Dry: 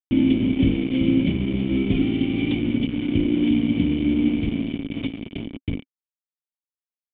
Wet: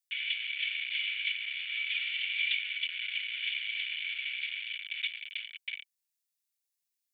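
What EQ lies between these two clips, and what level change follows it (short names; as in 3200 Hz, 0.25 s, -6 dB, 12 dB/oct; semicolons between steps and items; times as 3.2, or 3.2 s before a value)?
steep high-pass 1600 Hz 48 dB/oct; high shelf 2900 Hz +12 dB; notch 3100 Hz, Q 18; 0.0 dB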